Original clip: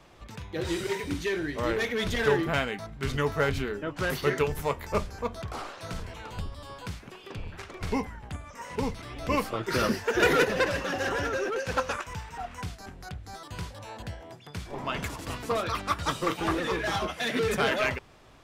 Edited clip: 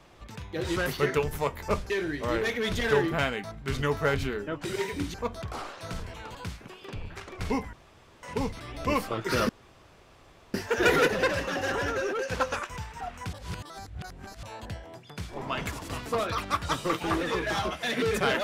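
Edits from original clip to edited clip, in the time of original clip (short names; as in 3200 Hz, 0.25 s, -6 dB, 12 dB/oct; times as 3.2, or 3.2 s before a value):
0.76–1.25 swap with 4–5.14
6.35–6.77 cut
8.15–8.65 room tone
9.91 insert room tone 1.05 s
12.7–13.8 reverse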